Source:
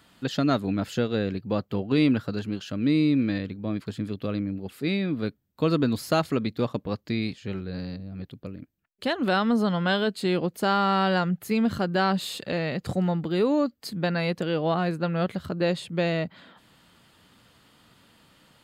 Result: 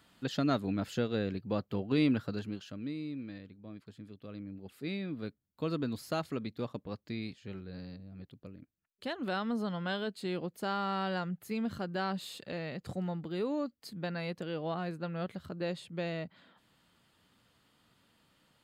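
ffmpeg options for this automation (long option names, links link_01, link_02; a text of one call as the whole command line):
ffmpeg -i in.wav -af "volume=0.5dB,afade=type=out:start_time=2.33:duration=0.62:silence=0.266073,afade=type=in:start_time=4.23:duration=0.54:silence=0.446684" out.wav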